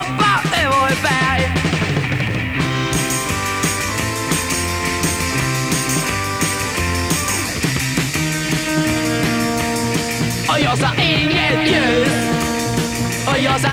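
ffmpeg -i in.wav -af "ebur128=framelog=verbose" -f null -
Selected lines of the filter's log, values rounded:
Integrated loudness:
  I:         -17.0 LUFS
  Threshold: -27.0 LUFS
Loudness range:
  LRA:         2.3 LU
  Threshold: -37.3 LUFS
  LRA low:   -18.2 LUFS
  LRA high:  -15.8 LUFS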